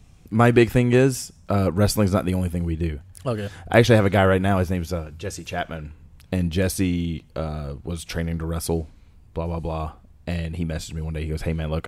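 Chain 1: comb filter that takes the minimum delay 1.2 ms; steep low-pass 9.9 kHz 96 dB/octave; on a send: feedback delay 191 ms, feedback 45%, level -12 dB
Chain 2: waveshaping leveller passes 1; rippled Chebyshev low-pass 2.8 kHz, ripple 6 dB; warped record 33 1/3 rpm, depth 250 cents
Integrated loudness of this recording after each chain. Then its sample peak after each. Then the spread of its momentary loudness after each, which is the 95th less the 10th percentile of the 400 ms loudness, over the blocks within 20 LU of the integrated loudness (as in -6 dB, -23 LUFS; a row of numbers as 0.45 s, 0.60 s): -25.5 LUFS, -24.0 LUFS; -4.0 dBFS, -3.0 dBFS; 13 LU, 14 LU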